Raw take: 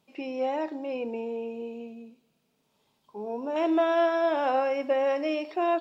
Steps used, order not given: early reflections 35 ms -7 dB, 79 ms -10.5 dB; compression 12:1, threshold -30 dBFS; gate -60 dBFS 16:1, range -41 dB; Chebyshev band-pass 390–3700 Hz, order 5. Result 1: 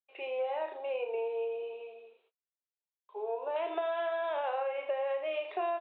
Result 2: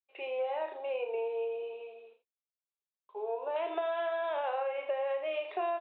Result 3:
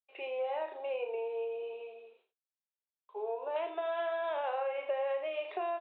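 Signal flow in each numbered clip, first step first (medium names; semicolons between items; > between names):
early reflections > gate > Chebyshev band-pass > compression; Chebyshev band-pass > gate > early reflections > compression; gate > early reflections > compression > Chebyshev band-pass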